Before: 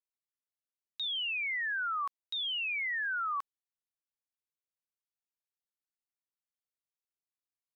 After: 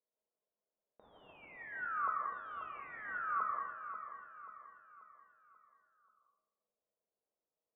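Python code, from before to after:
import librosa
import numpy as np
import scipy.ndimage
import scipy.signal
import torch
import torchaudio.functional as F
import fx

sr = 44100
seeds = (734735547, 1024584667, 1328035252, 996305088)

y = fx.peak_eq(x, sr, hz=480.0, db=14.0, octaves=0.67)
y = fx.comb_fb(y, sr, f0_hz=210.0, decay_s=0.39, harmonics='odd', damping=0.0, mix_pct=80)
y = fx.rev_freeverb(y, sr, rt60_s=0.83, hf_ratio=0.6, predelay_ms=100, drr_db=-0.5)
y = fx.mod_noise(y, sr, seeds[0], snr_db=20)
y = scipy.signal.sosfilt(scipy.signal.cheby2(4, 70, 4200.0, 'lowpass', fs=sr, output='sos'), y)
y = fx.tilt_eq(y, sr, slope=2.0)
y = fx.doubler(y, sr, ms=43.0, db=-13.0)
y = fx.echo_feedback(y, sr, ms=536, feedback_pct=45, wet_db=-9.5)
y = F.gain(torch.from_numpy(y), 16.5).numpy()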